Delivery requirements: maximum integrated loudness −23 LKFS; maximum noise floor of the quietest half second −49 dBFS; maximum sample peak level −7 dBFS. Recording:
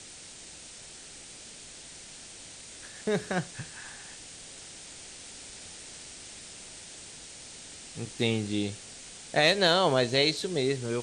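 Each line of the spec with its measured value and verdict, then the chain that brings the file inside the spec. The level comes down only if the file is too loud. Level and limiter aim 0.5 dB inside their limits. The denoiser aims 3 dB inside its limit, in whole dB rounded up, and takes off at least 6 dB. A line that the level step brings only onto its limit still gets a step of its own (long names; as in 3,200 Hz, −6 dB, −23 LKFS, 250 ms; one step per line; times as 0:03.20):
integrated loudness −27.5 LKFS: in spec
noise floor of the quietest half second −47 dBFS: out of spec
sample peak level −10.0 dBFS: in spec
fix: broadband denoise 6 dB, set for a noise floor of −47 dBFS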